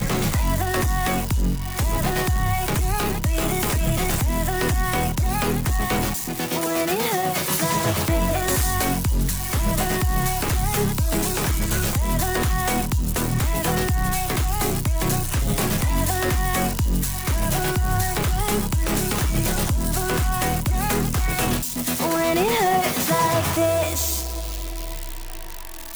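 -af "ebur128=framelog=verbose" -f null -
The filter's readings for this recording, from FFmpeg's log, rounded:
Integrated loudness:
  I:         -22.2 LUFS
  Threshold: -32.3 LUFS
Loudness range:
  LRA:         1.6 LU
  Threshold: -42.2 LUFS
  LRA low:   -22.7 LUFS
  LRA high:  -21.0 LUFS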